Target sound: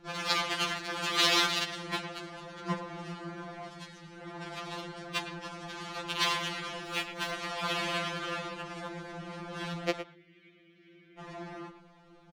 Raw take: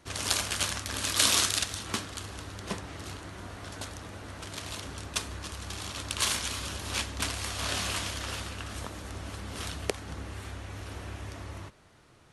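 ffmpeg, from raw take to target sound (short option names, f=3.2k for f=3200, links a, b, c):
-filter_complex "[0:a]lowpass=4.5k,asplit=2[a][b];[b]adynamicsmooth=sensitivity=7.5:basefreq=1.4k,volume=-1dB[c];[a][c]amix=inputs=2:normalize=0,asettb=1/sr,asplit=3[d][e][f];[d]atrim=end=3.684[g];[e]atrim=start=3.68:end=4.17,asetpts=PTS-STARTPTS,afade=t=in:d=0.004:c=qsin,afade=t=out:st=0.486:d=0.004:c=qsin,equalizer=f=670:w=0.55:g=-12[h];[f]atrim=start=4.166[i];[g][h]acrossfade=d=0.004:c1=hsin:c2=qsin[j];[j][i]acrossfade=d=0.004:c1=qsin:c2=hsin,asettb=1/sr,asplit=3[k][l][m];[k]atrim=end=6.844[n];[l]atrim=start=6.84:end=7.31,asetpts=PTS-STARTPTS,afade=t=in:d=0.004:c=qsin,afade=t=out:st=0.466:d=0.004:c=qsin,aeval=exprs='sgn(val(0))*max(abs(val(0))-0.0119,0)':c=same[o];[m]atrim=start=7.306[p];[n][o]acrossfade=d=0.004:c1=hsin:c2=qsin[q];[q][p]acrossfade=d=0.004:c1=qsin:c2=hsin,asettb=1/sr,asplit=3[r][s][t];[r]atrim=end=10.024[u];[s]atrim=start=10.02:end=11.19,asetpts=PTS-STARTPTS,afade=t=in:d=0.004:c=qsin,afade=t=out:st=1.166:d=0.004:c=qsin,asplit=3[v][w][x];[v]bandpass=f=270:t=q:w=8,volume=0dB[y];[w]bandpass=f=2.29k:t=q:w=8,volume=-6dB[z];[x]bandpass=f=3.01k:t=q:w=8,volume=-9dB[aa];[y][z][aa]amix=inputs=3:normalize=0[ab];[t]atrim=start=11.186[ac];[u][ab]acrossfade=d=0.004:c1=hsin:c2=qsin[ad];[ad][ac]acrossfade=d=0.004:c1=qsin:c2=hsin,asplit=2[ae][af];[af]adelay=110,highpass=300,lowpass=3.4k,asoftclip=type=hard:threshold=-9.5dB,volume=-10dB[ag];[ae][ag]amix=inputs=2:normalize=0,afftfilt=real='re*2.83*eq(mod(b,8),0)':imag='im*2.83*eq(mod(b,8),0)':win_size=2048:overlap=0.75"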